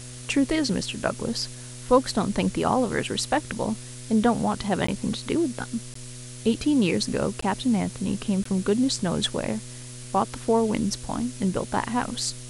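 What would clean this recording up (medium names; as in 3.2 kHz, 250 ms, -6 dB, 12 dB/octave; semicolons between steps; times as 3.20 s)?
de-hum 123.8 Hz, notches 5; interpolate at 4.87/5.94/7.41/8.44 s, 14 ms; noise print and reduce 30 dB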